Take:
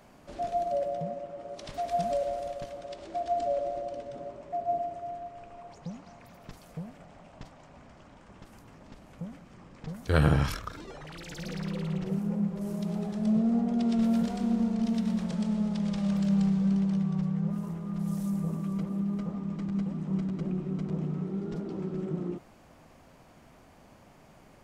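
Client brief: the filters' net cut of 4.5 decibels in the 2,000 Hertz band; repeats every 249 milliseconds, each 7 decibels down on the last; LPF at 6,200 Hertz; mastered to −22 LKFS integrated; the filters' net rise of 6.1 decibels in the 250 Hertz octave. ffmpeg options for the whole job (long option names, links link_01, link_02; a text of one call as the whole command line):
ffmpeg -i in.wav -af "lowpass=6200,equalizer=frequency=250:width_type=o:gain=8,equalizer=frequency=2000:width_type=o:gain=-6.5,aecho=1:1:249|498|747|996|1245:0.447|0.201|0.0905|0.0407|0.0183,volume=2.5dB" out.wav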